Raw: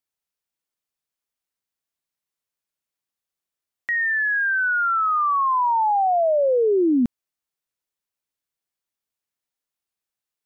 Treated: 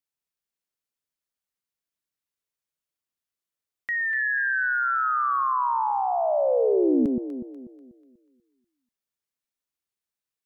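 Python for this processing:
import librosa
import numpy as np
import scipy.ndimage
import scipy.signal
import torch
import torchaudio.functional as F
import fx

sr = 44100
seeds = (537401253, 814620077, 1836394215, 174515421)

y = fx.peak_eq(x, sr, hz=770.0, db=-3.5, octaves=0.57)
y = fx.echo_alternate(y, sr, ms=122, hz=830.0, feedback_pct=63, wet_db=-3)
y = y * librosa.db_to_amplitude(-4.0)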